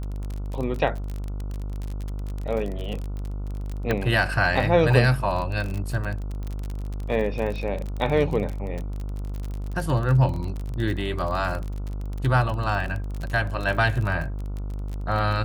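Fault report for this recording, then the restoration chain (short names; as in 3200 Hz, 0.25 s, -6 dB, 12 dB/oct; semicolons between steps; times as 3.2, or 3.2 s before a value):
buzz 50 Hz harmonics 29 -30 dBFS
crackle 33/s -28 dBFS
3.91 pop -11 dBFS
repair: de-click; de-hum 50 Hz, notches 29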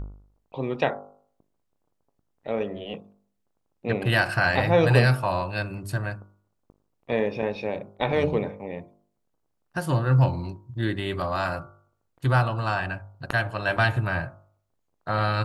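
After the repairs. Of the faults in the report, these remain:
none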